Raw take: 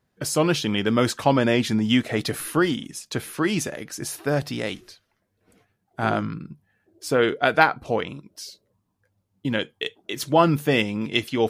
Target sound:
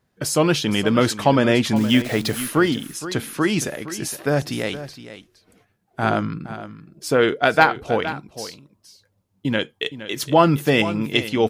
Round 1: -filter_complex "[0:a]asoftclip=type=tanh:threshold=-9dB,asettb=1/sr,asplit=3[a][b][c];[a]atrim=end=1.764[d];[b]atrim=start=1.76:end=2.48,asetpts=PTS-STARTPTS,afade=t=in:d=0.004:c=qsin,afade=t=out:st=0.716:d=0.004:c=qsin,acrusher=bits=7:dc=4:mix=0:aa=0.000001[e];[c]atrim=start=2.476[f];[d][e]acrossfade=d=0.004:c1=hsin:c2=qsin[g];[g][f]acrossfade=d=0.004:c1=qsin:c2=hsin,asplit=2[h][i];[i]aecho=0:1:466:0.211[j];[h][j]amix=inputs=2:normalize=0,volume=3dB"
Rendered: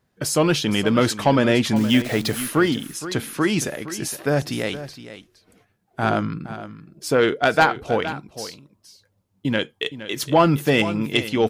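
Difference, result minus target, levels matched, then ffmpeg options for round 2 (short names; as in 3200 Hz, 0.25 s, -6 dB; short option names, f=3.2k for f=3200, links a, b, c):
soft clip: distortion +11 dB
-filter_complex "[0:a]asoftclip=type=tanh:threshold=-2dB,asettb=1/sr,asplit=3[a][b][c];[a]atrim=end=1.764[d];[b]atrim=start=1.76:end=2.48,asetpts=PTS-STARTPTS,afade=t=in:d=0.004:c=qsin,afade=t=out:st=0.716:d=0.004:c=qsin,acrusher=bits=7:dc=4:mix=0:aa=0.000001[e];[c]atrim=start=2.476[f];[d][e]acrossfade=d=0.004:c1=hsin:c2=qsin[g];[g][f]acrossfade=d=0.004:c1=qsin:c2=hsin,asplit=2[h][i];[i]aecho=0:1:466:0.211[j];[h][j]amix=inputs=2:normalize=0,volume=3dB"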